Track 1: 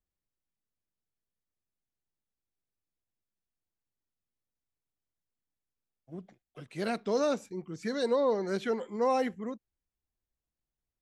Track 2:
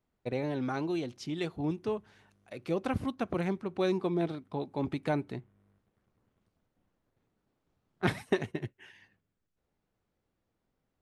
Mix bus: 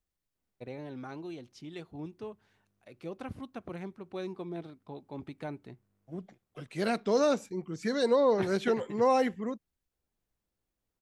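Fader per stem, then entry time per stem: +2.5 dB, -9.0 dB; 0.00 s, 0.35 s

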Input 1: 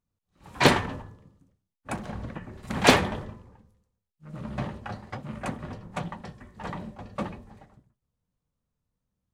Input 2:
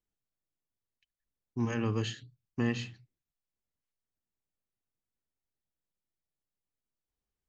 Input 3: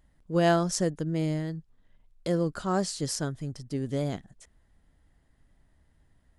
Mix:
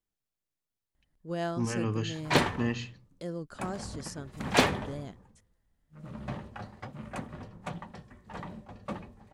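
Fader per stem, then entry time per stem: -5.5 dB, 0.0 dB, -10.5 dB; 1.70 s, 0.00 s, 0.95 s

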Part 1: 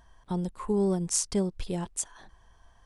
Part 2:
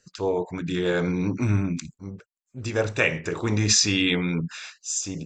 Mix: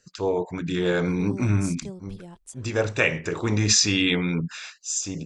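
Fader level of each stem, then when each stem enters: -11.0 dB, +0.5 dB; 0.50 s, 0.00 s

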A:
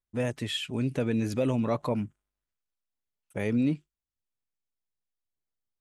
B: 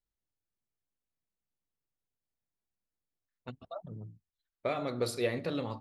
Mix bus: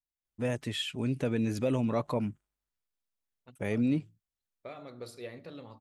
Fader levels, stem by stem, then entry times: -2.0 dB, -11.5 dB; 0.25 s, 0.00 s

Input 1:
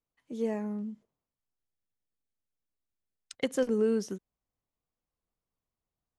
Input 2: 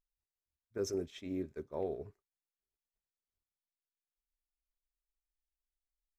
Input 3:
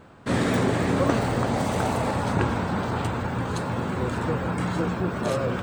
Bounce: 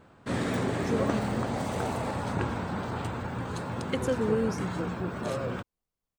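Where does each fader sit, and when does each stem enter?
-0.5 dB, -6.0 dB, -6.5 dB; 0.50 s, 0.00 s, 0.00 s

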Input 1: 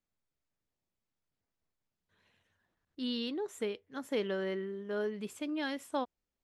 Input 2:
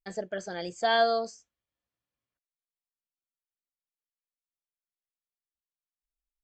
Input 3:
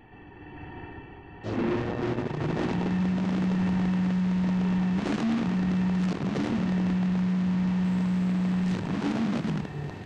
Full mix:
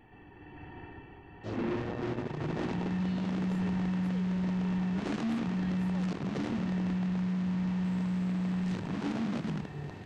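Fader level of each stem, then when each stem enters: -16.0 dB, mute, -5.5 dB; 0.00 s, mute, 0.00 s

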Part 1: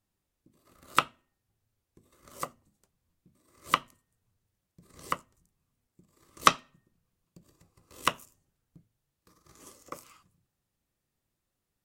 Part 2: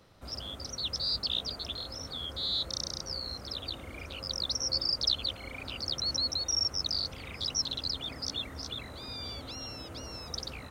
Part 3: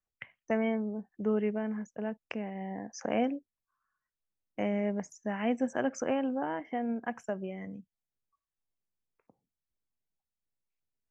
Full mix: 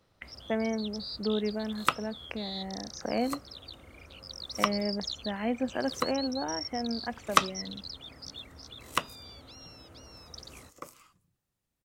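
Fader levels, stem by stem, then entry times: -2.0 dB, -8.5 dB, -0.5 dB; 0.90 s, 0.00 s, 0.00 s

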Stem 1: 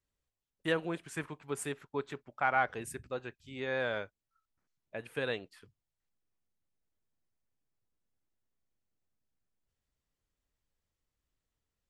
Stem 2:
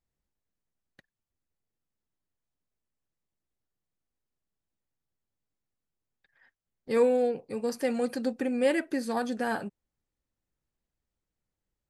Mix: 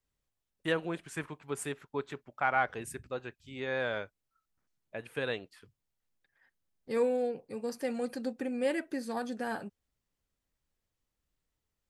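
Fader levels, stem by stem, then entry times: +0.5 dB, -5.5 dB; 0.00 s, 0.00 s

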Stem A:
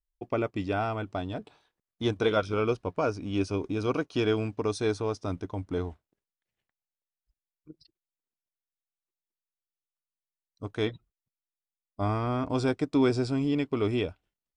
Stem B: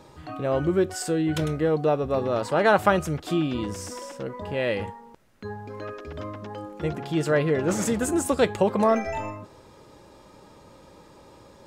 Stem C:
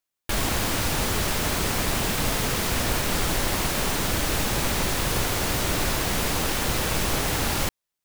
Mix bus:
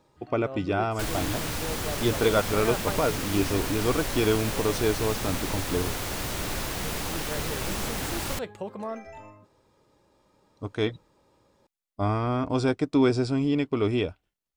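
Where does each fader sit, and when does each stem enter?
+2.5 dB, -14.0 dB, -6.5 dB; 0.00 s, 0.00 s, 0.70 s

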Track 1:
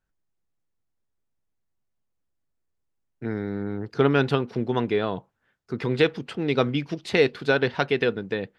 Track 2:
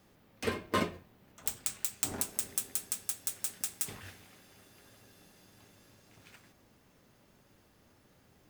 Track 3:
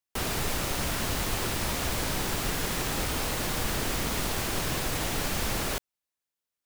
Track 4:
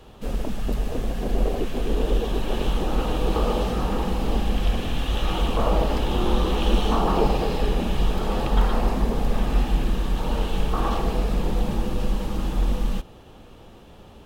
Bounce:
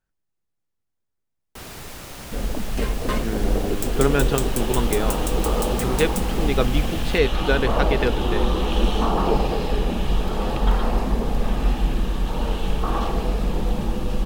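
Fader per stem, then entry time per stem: -0.5 dB, +2.5 dB, -7.5 dB, +0.5 dB; 0.00 s, 2.35 s, 1.40 s, 2.10 s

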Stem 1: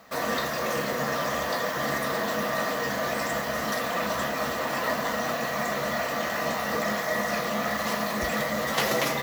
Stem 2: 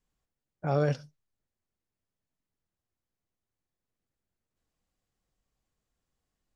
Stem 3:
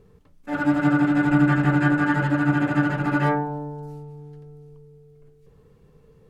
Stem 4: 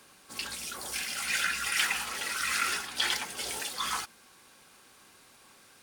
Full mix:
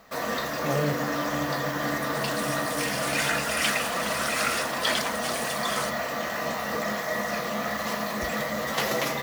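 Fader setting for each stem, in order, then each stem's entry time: -1.5 dB, -2.0 dB, -15.0 dB, +1.5 dB; 0.00 s, 0.00 s, 0.00 s, 1.85 s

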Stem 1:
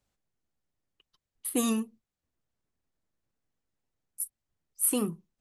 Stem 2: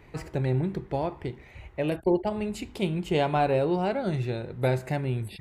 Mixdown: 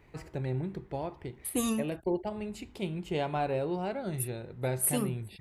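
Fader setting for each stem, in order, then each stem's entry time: -2.5 dB, -7.0 dB; 0.00 s, 0.00 s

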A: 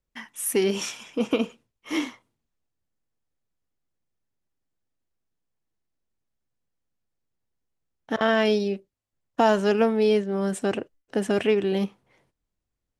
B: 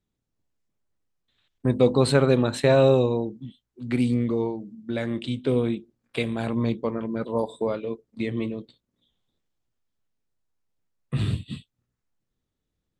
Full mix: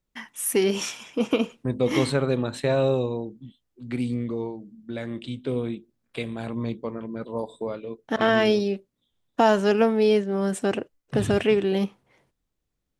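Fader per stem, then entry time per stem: +1.0 dB, -4.5 dB; 0.00 s, 0.00 s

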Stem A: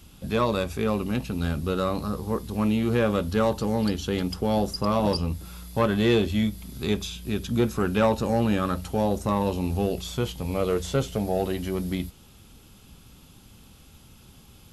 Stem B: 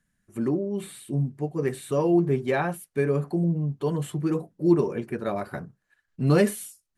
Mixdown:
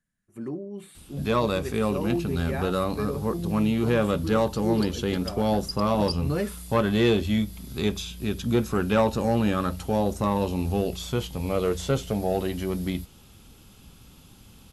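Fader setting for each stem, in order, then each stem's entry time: 0.0 dB, -8.0 dB; 0.95 s, 0.00 s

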